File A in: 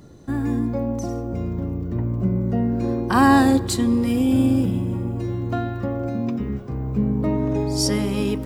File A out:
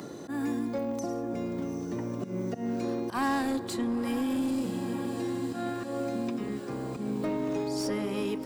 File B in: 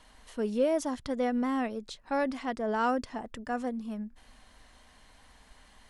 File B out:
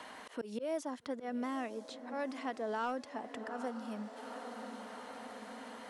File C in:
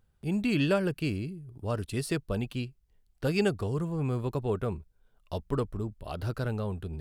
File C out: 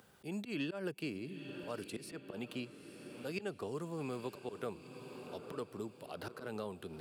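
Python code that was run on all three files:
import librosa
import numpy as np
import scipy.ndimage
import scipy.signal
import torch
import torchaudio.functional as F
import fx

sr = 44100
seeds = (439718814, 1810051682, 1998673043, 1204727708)

p1 = scipy.signal.sosfilt(scipy.signal.butter(2, 260.0, 'highpass', fs=sr, output='sos'), x)
p2 = fx.auto_swell(p1, sr, attack_ms=163.0)
p3 = fx.echo_diffused(p2, sr, ms=854, feedback_pct=51, wet_db=-15.5)
p4 = 10.0 ** (-21.0 / 20.0) * (np.abs((p3 / 10.0 ** (-21.0 / 20.0) + 3.0) % 4.0 - 2.0) - 1.0)
p5 = p3 + F.gain(torch.from_numpy(p4), -7.0).numpy()
p6 = fx.band_squash(p5, sr, depth_pct=70)
y = F.gain(torch.from_numpy(p6), -8.5).numpy()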